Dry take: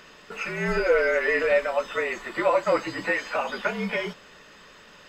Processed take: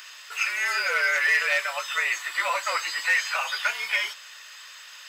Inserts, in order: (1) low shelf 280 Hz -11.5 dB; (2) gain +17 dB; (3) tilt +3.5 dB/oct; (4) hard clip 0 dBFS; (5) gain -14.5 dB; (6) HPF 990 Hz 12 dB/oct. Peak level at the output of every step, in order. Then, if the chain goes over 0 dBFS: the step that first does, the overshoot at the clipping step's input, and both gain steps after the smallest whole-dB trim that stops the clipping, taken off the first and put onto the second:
-11.5, +5.5, +7.0, 0.0, -14.5, -11.0 dBFS; step 2, 7.0 dB; step 2 +10 dB, step 5 -7.5 dB

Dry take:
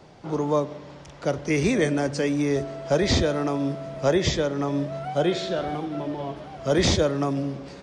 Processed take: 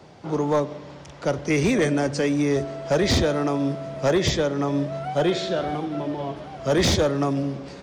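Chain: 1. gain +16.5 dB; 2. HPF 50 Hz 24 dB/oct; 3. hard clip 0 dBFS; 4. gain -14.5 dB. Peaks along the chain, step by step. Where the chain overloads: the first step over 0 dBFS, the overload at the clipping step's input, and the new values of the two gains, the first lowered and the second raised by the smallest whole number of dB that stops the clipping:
+6.5, +8.0, 0.0, -14.5 dBFS; step 1, 8.0 dB; step 1 +8.5 dB, step 4 -6.5 dB

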